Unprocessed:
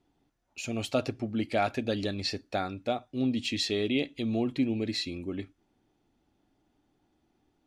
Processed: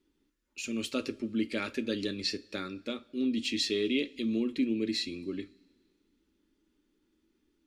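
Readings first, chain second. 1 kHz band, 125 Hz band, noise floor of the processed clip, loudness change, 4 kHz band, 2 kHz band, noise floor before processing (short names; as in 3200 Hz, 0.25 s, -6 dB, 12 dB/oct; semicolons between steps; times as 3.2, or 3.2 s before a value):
-12.5 dB, -10.0 dB, -76 dBFS, -1.5 dB, 0.0 dB, -1.0 dB, -75 dBFS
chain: fixed phaser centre 300 Hz, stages 4; two-slope reverb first 0.22 s, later 1.9 s, from -22 dB, DRR 11 dB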